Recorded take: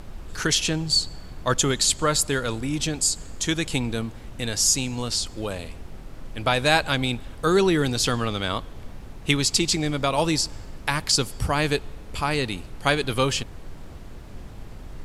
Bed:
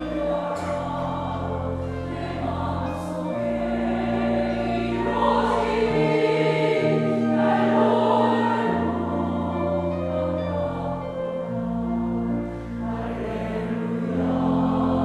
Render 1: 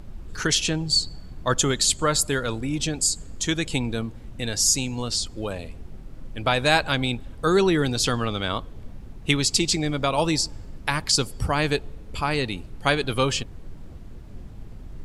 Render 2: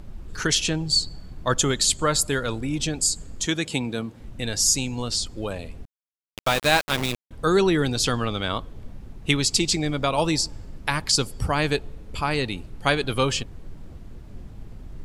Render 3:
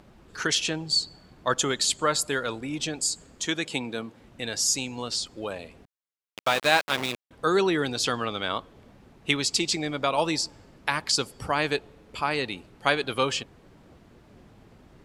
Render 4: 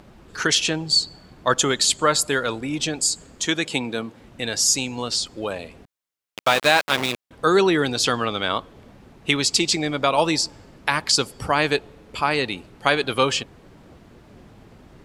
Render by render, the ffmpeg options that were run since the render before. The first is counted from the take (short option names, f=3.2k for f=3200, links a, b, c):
-af "afftdn=nr=8:nf=-40"
-filter_complex "[0:a]asettb=1/sr,asplit=3[a][b][c];[a]atrim=end=3.464[d];[b]atrim=start=3.46:end=4.2,asetpts=PTS-STARTPTS,afade=t=in:d=0.004:c=qsin,afade=t=out:st=0.736:d=0.004:c=qsin,highpass=130[e];[c]atrim=start=4.196[f];[d][e]acrossfade=d=0.004:c1=hsin:c2=qsin[g];[g][f]acrossfade=d=0.004:c1=qsin:c2=hsin,asettb=1/sr,asplit=3[h][i][j];[h]atrim=end=5.854[k];[i]atrim=start=5.85:end=7.31,asetpts=PTS-STARTPTS,afade=t=in:d=0.004:c=qsin,afade=t=out:st=1.456:d=0.004:c=qsin,aeval=exprs='val(0)*gte(abs(val(0)),0.0708)':c=same[l];[j]atrim=start=7.306[m];[k][l]acrossfade=d=0.004:c1=hsin:c2=qsin[n];[n][m]acrossfade=d=0.004:c1=qsin:c2=hsin"
-af "highpass=f=410:p=1,highshelf=f=5.7k:g=-7.5"
-af "volume=5.5dB,alimiter=limit=-2dB:level=0:latency=1"